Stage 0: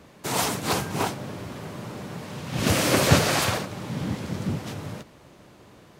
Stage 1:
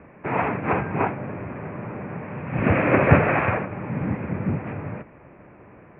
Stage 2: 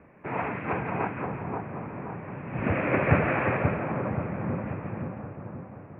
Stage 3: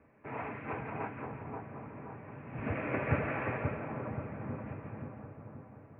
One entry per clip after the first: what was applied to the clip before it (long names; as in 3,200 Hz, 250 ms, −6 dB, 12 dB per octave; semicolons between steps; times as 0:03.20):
Chebyshev low-pass filter 2,500 Hz, order 6; level +4 dB
echo with a time of its own for lows and highs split 1,300 Hz, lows 529 ms, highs 171 ms, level −4 dB; level −7 dB
notch comb filter 180 Hz; level −8 dB